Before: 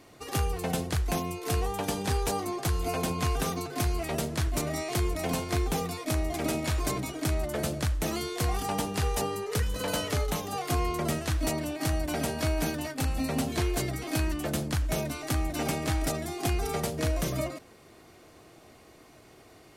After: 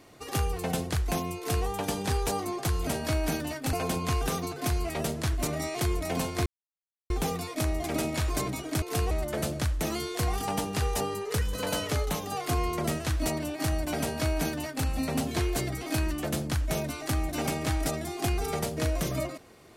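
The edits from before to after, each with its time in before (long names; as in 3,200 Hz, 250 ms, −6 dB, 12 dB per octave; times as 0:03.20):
0:01.37–0:01.66: duplicate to 0:07.32
0:05.60: splice in silence 0.64 s
0:12.21–0:13.07: duplicate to 0:02.87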